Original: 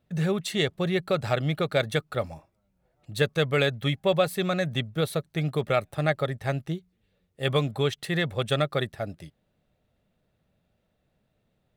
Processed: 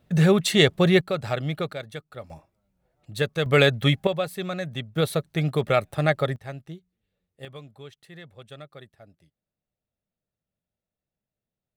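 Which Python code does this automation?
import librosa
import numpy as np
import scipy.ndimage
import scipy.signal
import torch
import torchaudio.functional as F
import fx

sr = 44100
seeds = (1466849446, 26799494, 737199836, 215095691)

y = fx.gain(x, sr, db=fx.steps((0.0, 8.0), (1.01, -1.5), (1.73, -10.5), (2.3, -1.0), (3.46, 6.0), (4.07, -4.0), (4.96, 3.0), (6.36, -8.5), (7.45, -18.0)))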